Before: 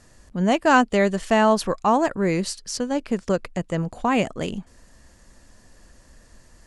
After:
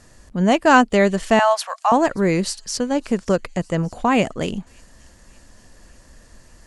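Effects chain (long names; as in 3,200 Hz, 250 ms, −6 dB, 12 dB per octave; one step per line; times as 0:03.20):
0:01.39–0:01.92: elliptic high-pass filter 660 Hz, stop band 50 dB
on a send: delay with a high-pass on its return 580 ms, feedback 59%, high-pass 4,800 Hz, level −20 dB
on the sum: level +3.5 dB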